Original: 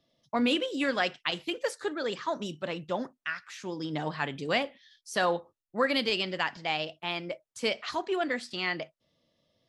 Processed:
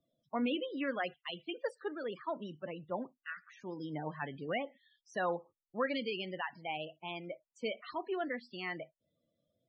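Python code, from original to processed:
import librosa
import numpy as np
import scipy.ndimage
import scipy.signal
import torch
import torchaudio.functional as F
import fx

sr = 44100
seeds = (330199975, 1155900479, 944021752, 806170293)

y = fx.spec_topn(x, sr, count=32)
y = fx.high_shelf(y, sr, hz=4100.0, db=-10.0)
y = fx.band_widen(y, sr, depth_pct=40, at=(1.14, 3.3))
y = F.gain(torch.from_numpy(y), -6.5).numpy()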